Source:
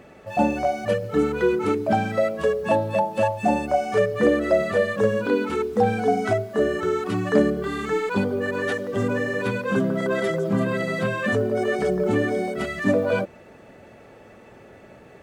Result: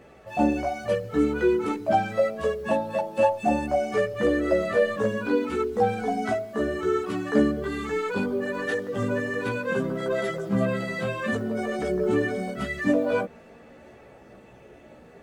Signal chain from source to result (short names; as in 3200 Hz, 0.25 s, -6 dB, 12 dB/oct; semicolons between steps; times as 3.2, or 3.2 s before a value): chorus voices 4, 0.27 Hz, delay 15 ms, depth 2.2 ms